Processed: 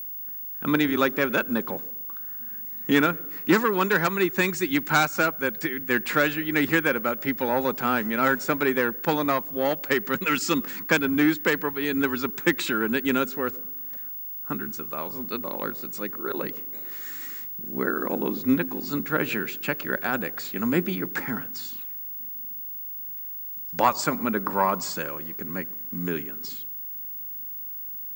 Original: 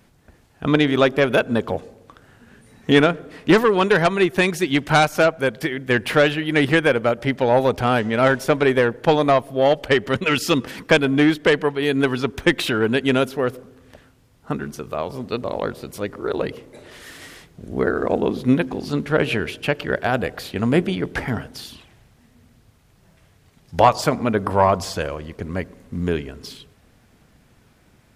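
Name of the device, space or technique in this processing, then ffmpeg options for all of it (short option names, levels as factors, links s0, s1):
old television with a line whistle: -af "highpass=f=170:w=0.5412,highpass=f=170:w=1.3066,equalizer=f=450:t=q:w=4:g=-6,equalizer=f=670:t=q:w=4:g=-10,equalizer=f=1400:t=q:w=4:g=3,equalizer=f=3100:t=q:w=4:g=-7,equalizer=f=7300:t=q:w=4:g=8,lowpass=f=8700:w=0.5412,lowpass=f=8700:w=1.3066,aeval=exprs='val(0)+0.0355*sin(2*PI*15625*n/s)':c=same,volume=0.668"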